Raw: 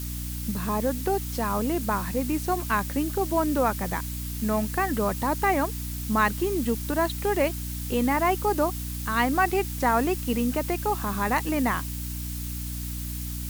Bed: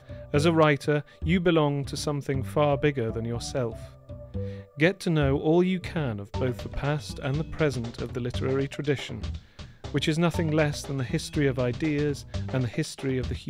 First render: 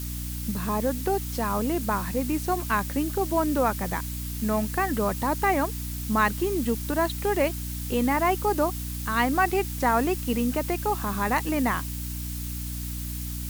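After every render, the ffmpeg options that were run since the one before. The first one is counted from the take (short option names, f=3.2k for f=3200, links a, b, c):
-af anull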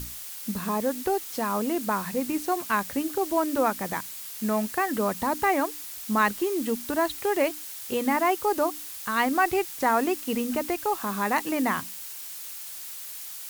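-af "bandreject=f=60:t=h:w=6,bandreject=f=120:t=h:w=6,bandreject=f=180:t=h:w=6,bandreject=f=240:t=h:w=6,bandreject=f=300:t=h:w=6"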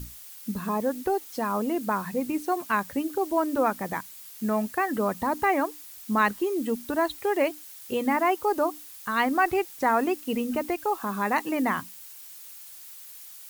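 -af "afftdn=nr=8:nf=-39"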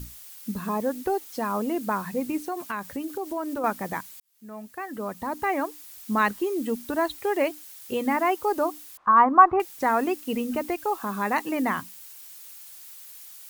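-filter_complex "[0:a]asettb=1/sr,asplit=3[a][b][c];[a]atrim=end=2.374[d];[b]atrim=start=2.37:end=3.64,asetpts=PTS-STARTPTS,afade=t=in:d=0.004:c=qsin,afade=t=out:st=1.266:d=0.004:c=qsin,acompressor=threshold=-28dB:ratio=3:attack=3.2:release=140:knee=1:detection=peak[e];[c]atrim=start=3.636[f];[d][e]acrossfade=d=0.004:c1=hsin:c2=qsin[g];[g][f]acrossfade=d=0.004:c1=qsin:c2=hsin,asettb=1/sr,asplit=3[h][i][j];[h]atrim=end=8.974[k];[i]atrim=start=8.97:end=9.6,asetpts=PTS-STARTPTS,afade=t=in:d=0.004:c=qsin,afade=t=out:st=0.626:d=0.004:c=qsin,lowpass=f=1.1k:t=q:w=5.3[l];[j]atrim=start=9.596[m];[k][l]acrossfade=d=0.004:c1=hsin:c2=qsin[n];[n][m]acrossfade=d=0.004:c1=qsin:c2=hsin,asplit=2[o][p];[o]atrim=end=4.2,asetpts=PTS-STARTPTS,afade=t=out:st=4.196:d=0.004:c=hsin[q];[p]atrim=start=4.2,asetpts=PTS-STARTPTS,afade=t=in:d=1.74[r];[q][r]concat=n=2:v=0:a=1"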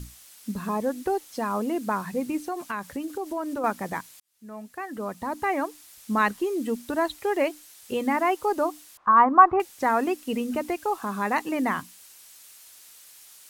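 -af "lowpass=12k"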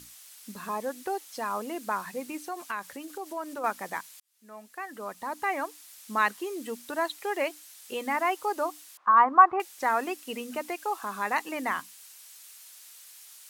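-af "highpass=f=850:p=1"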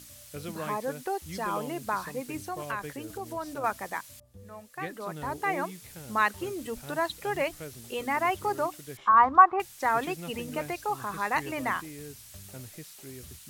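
-filter_complex "[1:a]volume=-17.5dB[a];[0:a][a]amix=inputs=2:normalize=0"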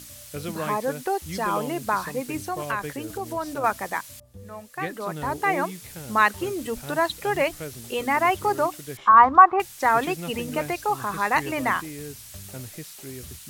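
-af "volume=6dB,alimiter=limit=-2dB:level=0:latency=1"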